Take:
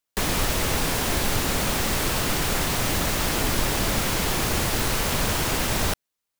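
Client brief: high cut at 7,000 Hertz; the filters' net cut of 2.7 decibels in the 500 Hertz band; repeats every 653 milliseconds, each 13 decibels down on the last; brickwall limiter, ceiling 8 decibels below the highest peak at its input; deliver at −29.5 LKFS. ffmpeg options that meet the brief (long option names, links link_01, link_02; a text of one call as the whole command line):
ffmpeg -i in.wav -af "lowpass=7000,equalizer=frequency=500:width_type=o:gain=-3.5,alimiter=limit=-18dB:level=0:latency=1,aecho=1:1:653|1306|1959:0.224|0.0493|0.0108,volume=-2dB" out.wav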